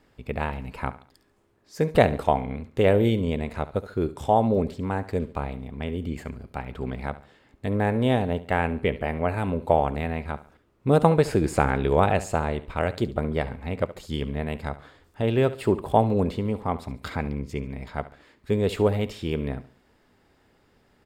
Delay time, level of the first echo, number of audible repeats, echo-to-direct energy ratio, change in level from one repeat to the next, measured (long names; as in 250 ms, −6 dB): 70 ms, −16.0 dB, 3, −15.5 dB, −8.5 dB